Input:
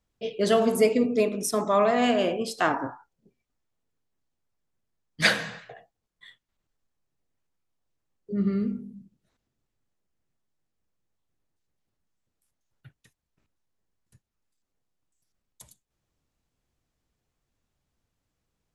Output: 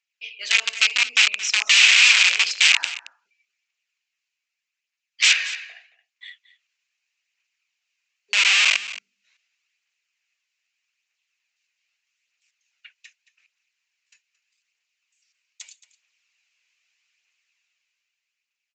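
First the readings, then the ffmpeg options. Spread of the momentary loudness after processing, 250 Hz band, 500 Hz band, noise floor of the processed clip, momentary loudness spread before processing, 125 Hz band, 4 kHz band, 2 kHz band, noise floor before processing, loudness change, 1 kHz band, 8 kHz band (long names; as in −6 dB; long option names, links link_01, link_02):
17 LU, below −35 dB, below −25 dB, −84 dBFS, 12 LU, below −40 dB, +17.0 dB, +14.0 dB, −83 dBFS, +9.0 dB, −6.5 dB, +14.5 dB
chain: -filter_complex "[0:a]equalizer=frequency=3400:width_type=o:width=0.37:gain=-5.5,dynaudnorm=framelen=110:gausssize=21:maxgain=12dB,aphaser=in_gain=1:out_gain=1:delay=2.1:decay=0.31:speed=0.81:type=triangular,aresample=16000,aeval=exprs='(mod(4.47*val(0)+1,2)-1)/4.47':channel_layout=same,aresample=44100,highpass=frequency=2500:width_type=q:width=4.2,asplit=2[link_01][link_02];[link_02]aecho=0:1:223:0.158[link_03];[link_01][link_03]amix=inputs=2:normalize=0"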